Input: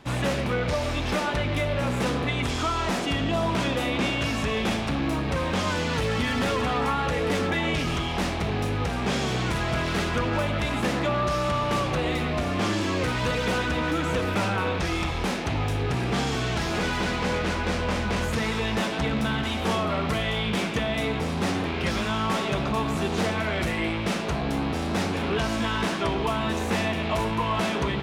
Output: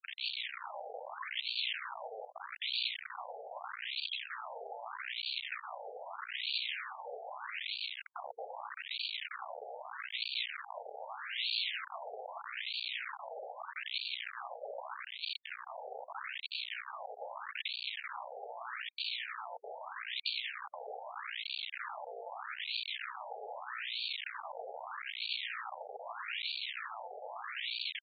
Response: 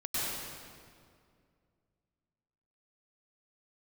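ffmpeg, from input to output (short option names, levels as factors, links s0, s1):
-filter_complex "[0:a]afftfilt=real='re*gte(hypot(re,im),0.2)':imag='im*gte(hypot(re,im),0.2)':win_size=1024:overlap=0.75,bandreject=f=60:t=h:w=6,bandreject=f=120:t=h:w=6,bandreject=f=180:t=h:w=6,afwtdn=0.0251,equalizer=f=220:t=o:w=0.21:g=11.5,aecho=1:1:4.9:0.93,alimiter=limit=0.133:level=0:latency=1:release=433,aeval=exprs='val(0)*sin(2*PI*25*n/s)':c=same,acompressor=threshold=0.0398:ratio=8,aeval=exprs='(mod(44.7*val(0)+1,2)-1)/44.7':c=same,acrossover=split=150|3000[s0][s1][s2];[s1]acompressor=threshold=0.00178:ratio=4[s3];[s0][s3][s2]amix=inputs=3:normalize=0,asetrate=52444,aresample=44100,atempo=0.840896,afftfilt=real='re*between(b*sr/1024,590*pow(3300/590,0.5+0.5*sin(2*PI*0.8*pts/sr))/1.41,590*pow(3300/590,0.5+0.5*sin(2*PI*0.8*pts/sr))*1.41)':imag='im*between(b*sr/1024,590*pow(3300/590,0.5+0.5*sin(2*PI*0.8*pts/sr))/1.41,590*pow(3300/590,0.5+0.5*sin(2*PI*0.8*pts/sr))*1.41)':win_size=1024:overlap=0.75,volume=5.96"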